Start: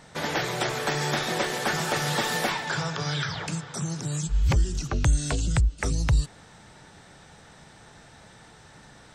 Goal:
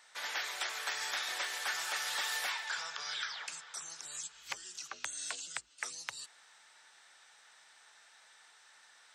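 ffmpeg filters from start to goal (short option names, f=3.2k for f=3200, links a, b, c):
-af "highpass=1.3k,volume=-6dB"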